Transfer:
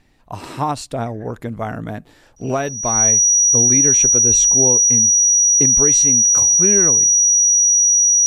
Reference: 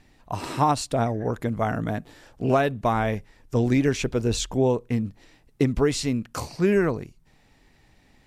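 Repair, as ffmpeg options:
-af "bandreject=f=5.8k:w=30"

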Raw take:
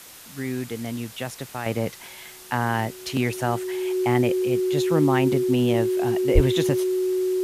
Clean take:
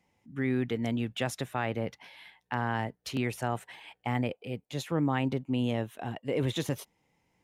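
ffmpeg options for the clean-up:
-filter_complex "[0:a]bandreject=f=370:w=30,asplit=3[a][b][c];[a]afade=t=out:st=6.34:d=0.02[d];[b]highpass=f=140:w=0.5412,highpass=f=140:w=1.3066,afade=t=in:st=6.34:d=0.02,afade=t=out:st=6.46:d=0.02[e];[c]afade=t=in:st=6.46:d=0.02[f];[d][e][f]amix=inputs=3:normalize=0,afwtdn=0.0071,asetnsamples=n=441:p=0,asendcmd='1.66 volume volume -7dB',volume=0dB"

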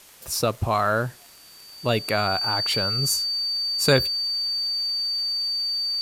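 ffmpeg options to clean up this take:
-af "adeclick=t=4,bandreject=f=4.6k:w=30,afwtdn=0.0035"

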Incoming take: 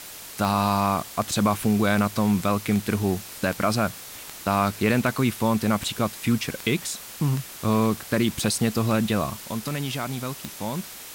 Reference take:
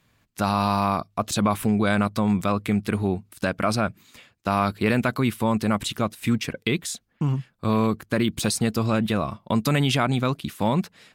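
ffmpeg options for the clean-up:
-af "adeclick=t=4,afwtdn=0.011,asetnsamples=n=441:p=0,asendcmd='9.49 volume volume 8dB',volume=0dB"

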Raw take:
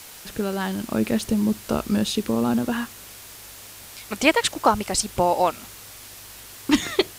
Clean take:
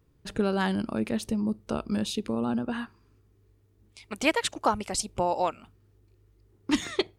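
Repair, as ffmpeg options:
-af "afwtdn=0.0089,asetnsamples=n=441:p=0,asendcmd='0.91 volume volume -6.5dB',volume=0dB"

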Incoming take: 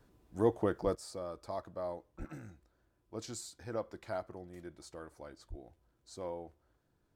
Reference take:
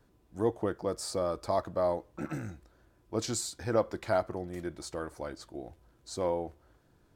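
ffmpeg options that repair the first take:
-filter_complex "[0:a]asplit=3[a][b][c];[a]afade=t=out:st=0.83:d=0.02[d];[b]highpass=f=140:w=0.5412,highpass=f=140:w=1.3066,afade=t=in:st=0.83:d=0.02,afade=t=out:st=0.95:d=0.02[e];[c]afade=t=in:st=0.95:d=0.02[f];[d][e][f]amix=inputs=3:normalize=0,asplit=3[g][h][i];[g]afade=t=out:st=2.18:d=0.02[j];[h]highpass=f=140:w=0.5412,highpass=f=140:w=1.3066,afade=t=in:st=2.18:d=0.02,afade=t=out:st=2.3:d=0.02[k];[i]afade=t=in:st=2.3:d=0.02[l];[j][k][l]amix=inputs=3:normalize=0,asplit=3[m][n][o];[m]afade=t=out:st=5.49:d=0.02[p];[n]highpass=f=140:w=0.5412,highpass=f=140:w=1.3066,afade=t=in:st=5.49:d=0.02,afade=t=out:st=5.61:d=0.02[q];[o]afade=t=in:st=5.61:d=0.02[r];[p][q][r]amix=inputs=3:normalize=0,asetnsamples=n=441:p=0,asendcmd='0.95 volume volume 10.5dB',volume=0dB"

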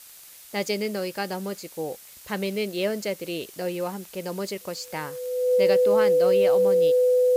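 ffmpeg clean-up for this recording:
-af "adeclick=t=4,bandreject=f=500:w=30,afftdn=nr=21:nf=-47"

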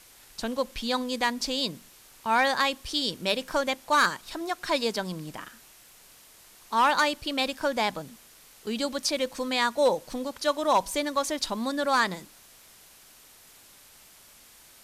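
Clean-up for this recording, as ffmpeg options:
-af "afwtdn=0.0025"

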